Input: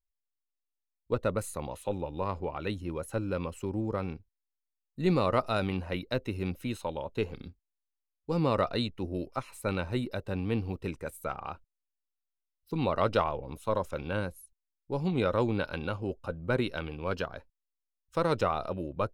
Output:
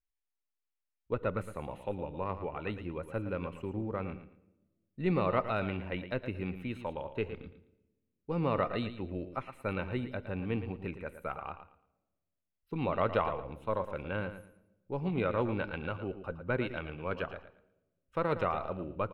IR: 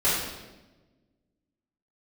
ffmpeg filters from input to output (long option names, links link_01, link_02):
-filter_complex "[0:a]highshelf=frequency=3700:width_type=q:width=1.5:gain=-13.5,aecho=1:1:113|226|339:0.282|0.0648|0.0149,asplit=2[link_01][link_02];[1:a]atrim=start_sample=2205[link_03];[link_02][link_03]afir=irnorm=-1:irlink=0,volume=-33.5dB[link_04];[link_01][link_04]amix=inputs=2:normalize=0,volume=-4dB"